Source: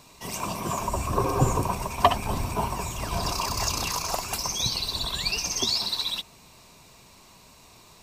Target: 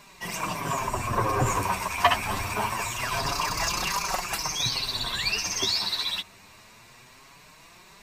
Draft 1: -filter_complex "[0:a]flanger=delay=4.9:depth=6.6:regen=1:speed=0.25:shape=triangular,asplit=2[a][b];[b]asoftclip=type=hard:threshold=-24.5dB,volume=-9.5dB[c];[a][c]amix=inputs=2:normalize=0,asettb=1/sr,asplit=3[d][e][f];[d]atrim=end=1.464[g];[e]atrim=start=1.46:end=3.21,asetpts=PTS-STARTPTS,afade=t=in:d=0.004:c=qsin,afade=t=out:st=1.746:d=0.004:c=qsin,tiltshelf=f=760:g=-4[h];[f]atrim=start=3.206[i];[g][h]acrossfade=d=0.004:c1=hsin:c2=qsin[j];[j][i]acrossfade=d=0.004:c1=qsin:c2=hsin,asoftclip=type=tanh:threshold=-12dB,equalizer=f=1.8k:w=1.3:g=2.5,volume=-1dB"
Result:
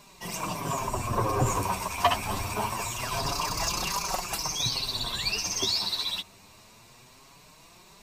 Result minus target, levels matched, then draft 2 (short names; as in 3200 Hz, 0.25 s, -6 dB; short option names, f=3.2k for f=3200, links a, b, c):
2000 Hz band -4.0 dB
-filter_complex "[0:a]flanger=delay=4.9:depth=6.6:regen=1:speed=0.25:shape=triangular,asplit=2[a][b];[b]asoftclip=type=hard:threshold=-24.5dB,volume=-9.5dB[c];[a][c]amix=inputs=2:normalize=0,asettb=1/sr,asplit=3[d][e][f];[d]atrim=end=1.464[g];[e]atrim=start=1.46:end=3.21,asetpts=PTS-STARTPTS,afade=t=in:d=0.004:c=qsin,afade=t=out:st=1.746:d=0.004:c=qsin,tiltshelf=f=760:g=-4[h];[f]atrim=start=3.206[i];[g][h]acrossfade=d=0.004:c1=hsin:c2=qsin[j];[j][i]acrossfade=d=0.004:c1=qsin:c2=hsin,asoftclip=type=tanh:threshold=-12dB,equalizer=f=1.8k:w=1.3:g=10.5,volume=-1dB"